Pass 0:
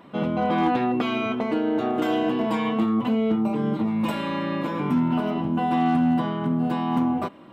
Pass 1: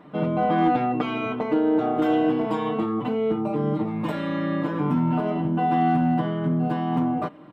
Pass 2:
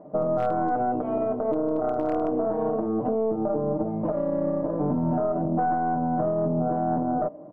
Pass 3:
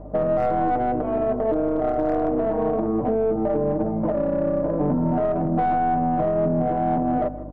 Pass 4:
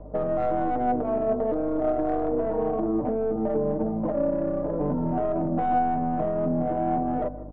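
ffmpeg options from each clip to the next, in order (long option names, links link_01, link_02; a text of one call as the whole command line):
ffmpeg -i in.wav -af "highshelf=frequency=2900:gain=-10.5,aecho=1:1:6.6:0.58" out.wav
ffmpeg -i in.wav -af "lowpass=frequency=630:width_type=q:width=4.9,aeval=exprs='0.422*(cos(1*acos(clip(val(0)/0.422,-1,1)))-cos(1*PI/2))+0.0944*(cos(2*acos(clip(val(0)/0.422,-1,1)))-cos(2*PI/2))':channel_layout=same,alimiter=limit=-13.5dB:level=0:latency=1:release=85,volume=-2.5dB" out.wav
ffmpeg -i in.wav -filter_complex "[0:a]aeval=exprs='val(0)+0.00708*(sin(2*PI*50*n/s)+sin(2*PI*2*50*n/s)/2+sin(2*PI*3*50*n/s)/3+sin(2*PI*4*50*n/s)/4+sin(2*PI*5*50*n/s)/5)':channel_layout=same,asplit=2[link_01][link_02];[link_02]asoftclip=type=tanh:threshold=-24.5dB,volume=-4dB[link_03];[link_01][link_03]amix=inputs=2:normalize=0,asplit=2[link_04][link_05];[link_05]adelay=160,lowpass=frequency=1400:poles=1,volume=-14.5dB,asplit=2[link_06][link_07];[link_07]adelay=160,lowpass=frequency=1400:poles=1,volume=0.47,asplit=2[link_08][link_09];[link_09]adelay=160,lowpass=frequency=1400:poles=1,volume=0.47,asplit=2[link_10][link_11];[link_11]adelay=160,lowpass=frequency=1400:poles=1,volume=0.47[link_12];[link_04][link_06][link_08][link_10][link_12]amix=inputs=5:normalize=0" out.wav
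ffmpeg -i in.wav -filter_complex "[0:a]flanger=delay=1.9:depth=2.9:regen=63:speed=0.41:shape=triangular,acrossover=split=250|900[link_01][link_02][link_03];[link_03]adynamicsmooth=sensitivity=5:basefreq=2500[link_04];[link_01][link_02][link_04]amix=inputs=3:normalize=0,volume=1dB" out.wav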